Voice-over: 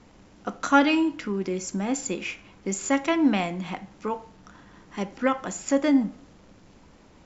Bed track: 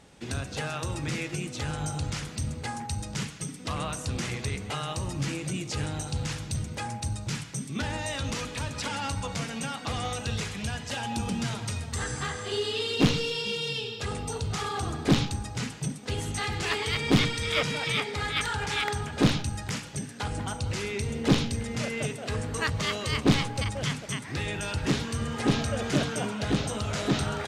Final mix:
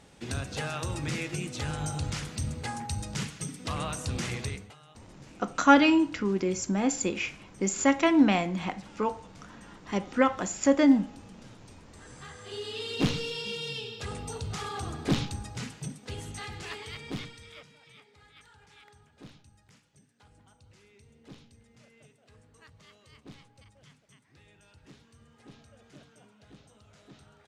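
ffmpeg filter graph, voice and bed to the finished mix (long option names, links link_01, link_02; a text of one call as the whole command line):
ffmpeg -i stem1.wav -i stem2.wav -filter_complex "[0:a]adelay=4950,volume=0.5dB[link_01];[1:a]volume=16.5dB,afade=type=out:start_time=4.4:duration=0.34:silence=0.0891251,afade=type=in:start_time=11.98:duration=1.06:silence=0.133352,afade=type=out:start_time=15.47:duration=2.22:silence=0.0707946[link_02];[link_01][link_02]amix=inputs=2:normalize=0" out.wav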